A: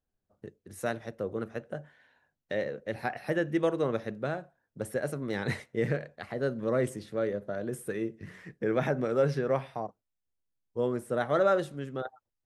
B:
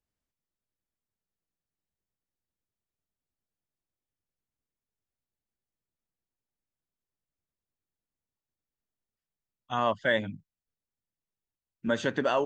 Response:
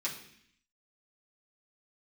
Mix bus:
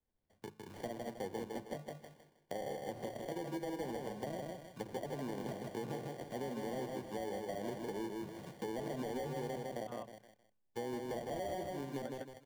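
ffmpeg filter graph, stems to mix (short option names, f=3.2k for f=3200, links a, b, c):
-filter_complex "[0:a]bandreject=f=53.18:t=h:w=4,bandreject=f=106.36:t=h:w=4,bandreject=f=159.54:t=h:w=4,bandreject=f=212.72:t=h:w=4,alimiter=level_in=0.5dB:limit=-24dB:level=0:latency=1:release=92,volume=-0.5dB,acrusher=samples=34:mix=1:aa=0.000001,volume=-2dB,asplit=3[a][b][c];[b]volume=-4.5dB[d];[1:a]adelay=150,volume=-18.5dB[e];[c]apad=whole_len=555885[f];[e][f]sidechaingate=range=-33dB:threshold=-57dB:ratio=16:detection=peak[g];[d]aecho=0:1:157|314|471|628:1|0.3|0.09|0.027[h];[a][g][h]amix=inputs=3:normalize=0,acrossover=split=160|820[i][j][k];[i]acompressor=threshold=-59dB:ratio=4[l];[j]acompressor=threshold=-38dB:ratio=4[m];[k]acompressor=threshold=-53dB:ratio=4[n];[l][m][n]amix=inputs=3:normalize=0"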